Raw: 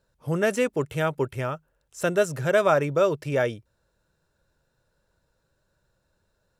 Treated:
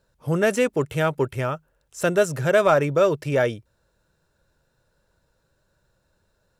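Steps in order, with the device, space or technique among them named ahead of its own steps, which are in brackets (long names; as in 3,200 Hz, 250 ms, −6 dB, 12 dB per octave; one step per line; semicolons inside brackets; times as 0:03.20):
parallel distortion (in parallel at −12 dB: hard clipping −21 dBFS, distortion −9 dB)
on the sum: level +1.5 dB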